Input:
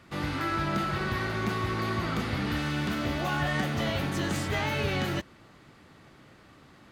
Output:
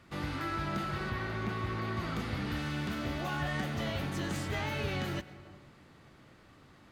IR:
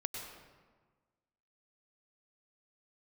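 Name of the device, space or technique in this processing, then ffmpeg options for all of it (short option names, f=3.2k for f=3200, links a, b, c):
compressed reverb return: -filter_complex "[0:a]asplit=2[a][b];[1:a]atrim=start_sample=2205[c];[b][c]afir=irnorm=-1:irlink=0,acompressor=threshold=-33dB:ratio=6,volume=-6dB[d];[a][d]amix=inputs=2:normalize=0,lowshelf=f=65:g=5.5,asettb=1/sr,asplit=3[e][f][g];[e]atrim=end=1.104[h];[f]atrim=start=1.1:end=1.97,asetpts=PTS-STARTPTS,afade=t=in:d=0.004:c=qsin,afade=t=out:st=0.866:d=0.004:c=qsin,acrossover=split=3900[i][j];[j]acompressor=threshold=-51dB:ratio=4:attack=1:release=60[k];[i][k]amix=inputs=2:normalize=0[l];[g]atrim=start=1.966[m];[h][l]acrossfade=d=0.004:c1=hsin:c2=qsin[n];[n][m]acrossfade=d=0.004:c1=qsin:c2=hsin,volume=-7.5dB"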